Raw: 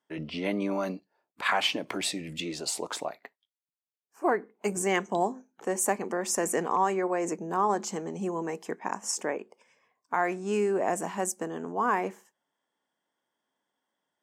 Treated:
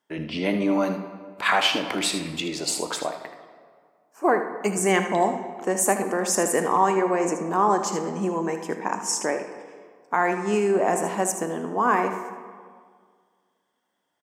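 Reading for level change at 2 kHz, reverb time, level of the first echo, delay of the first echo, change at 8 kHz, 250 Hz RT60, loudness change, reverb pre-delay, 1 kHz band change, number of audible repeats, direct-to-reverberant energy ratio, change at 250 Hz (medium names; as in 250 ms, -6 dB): +6.0 dB, 1.9 s, -11.0 dB, 78 ms, +5.5 dB, 2.0 s, +6.0 dB, 7 ms, +6.0 dB, 1, 6.0 dB, +6.5 dB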